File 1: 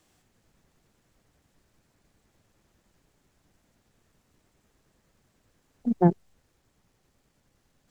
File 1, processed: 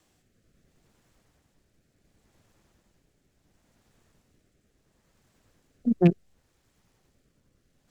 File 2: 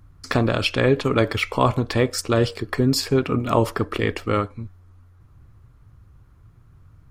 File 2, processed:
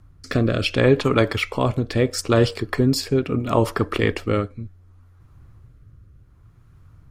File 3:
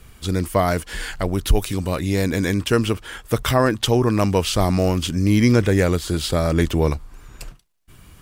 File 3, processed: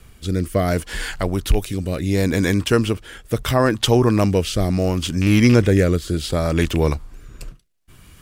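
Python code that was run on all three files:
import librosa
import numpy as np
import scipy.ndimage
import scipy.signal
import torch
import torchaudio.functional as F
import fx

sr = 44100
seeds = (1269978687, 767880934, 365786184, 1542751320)

y = fx.rattle_buzz(x, sr, strikes_db=-14.0, level_db=-17.0)
y = fx.rotary(y, sr, hz=0.7)
y = y * librosa.db_to_amplitude(2.5)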